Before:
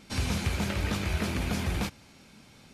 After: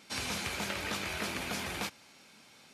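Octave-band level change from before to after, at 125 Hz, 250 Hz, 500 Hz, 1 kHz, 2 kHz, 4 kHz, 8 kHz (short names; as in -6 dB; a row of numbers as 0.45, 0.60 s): -15.5, -9.5, -4.0, -1.5, -0.5, 0.0, 0.0 dB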